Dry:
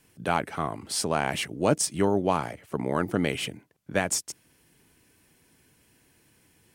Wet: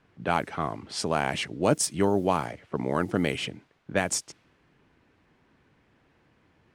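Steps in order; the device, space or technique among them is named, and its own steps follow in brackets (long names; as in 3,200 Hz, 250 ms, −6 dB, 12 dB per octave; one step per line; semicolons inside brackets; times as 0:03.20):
cassette deck with a dynamic noise filter (white noise bed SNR 31 dB; low-pass that shuts in the quiet parts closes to 1,800 Hz, open at −20.5 dBFS)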